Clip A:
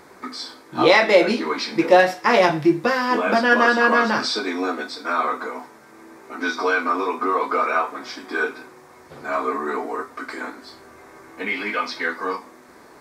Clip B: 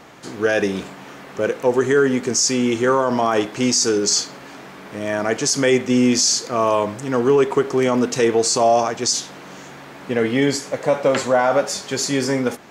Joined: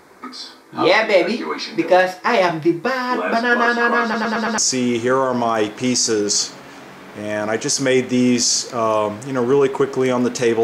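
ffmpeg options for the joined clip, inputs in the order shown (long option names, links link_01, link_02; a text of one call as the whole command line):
ffmpeg -i cue0.wav -i cue1.wav -filter_complex "[0:a]apad=whole_dur=10.63,atrim=end=10.63,asplit=5[link_01][link_02][link_03][link_04][link_05];[link_01]atrim=end=4.142[link_06];[link_02]atrim=start=4.028:end=4.142[link_07];[link_03]atrim=start=4.028:end=4.142[link_08];[link_04]atrim=start=4.028:end=4.142[link_09];[link_05]atrim=start=4.028:end=4.142[link_10];[1:a]atrim=start=2.348:end=8.4[link_11];[link_06][link_07]acrossfade=duration=0.004:curve1=hsin:curve2=hsin[link_12];[link_12][link_08]acrossfade=duration=0.004:curve1=hsin:curve2=hsin[link_13];[link_13][link_09]acrossfade=duration=0.004:curve1=hsin:curve2=hsin[link_14];[link_14][link_10]acrossfade=duration=0.004:curve1=hsin:curve2=hsin[link_15];[link_15][link_11]acrossfade=duration=0.004:curve1=hsin:curve2=hsin" out.wav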